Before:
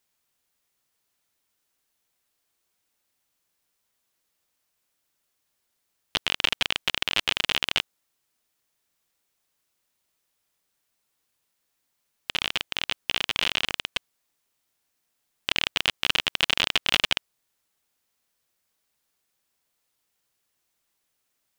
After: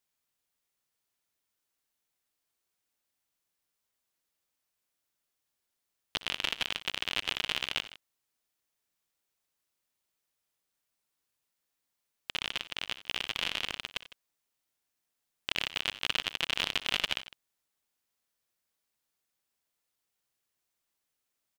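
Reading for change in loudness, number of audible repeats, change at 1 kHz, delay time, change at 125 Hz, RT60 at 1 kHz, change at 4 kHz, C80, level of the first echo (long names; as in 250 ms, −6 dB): −7.5 dB, 3, −7.5 dB, 61 ms, −7.5 dB, no reverb audible, −7.5 dB, no reverb audible, −17.5 dB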